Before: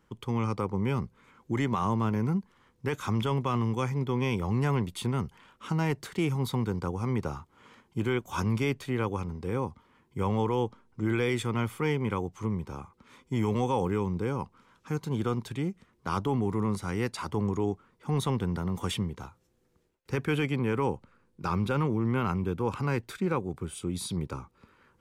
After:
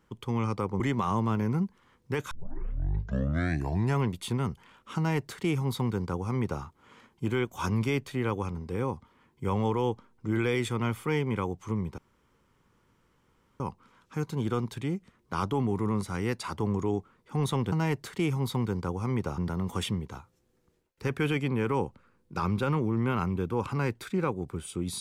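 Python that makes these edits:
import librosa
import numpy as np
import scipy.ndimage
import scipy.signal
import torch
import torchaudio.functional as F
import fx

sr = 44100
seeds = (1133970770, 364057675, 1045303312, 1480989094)

y = fx.edit(x, sr, fx.cut(start_s=0.8, length_s=0.74),
    fx.tape_start(start_s=3.05, length_s=1.68),
    fx.duplicate(start_s=5.71, length_s=1.66, to_s=18.46),
    fx.room_tone_fill(start_s=12.72, length_s=1.62), tone=tone)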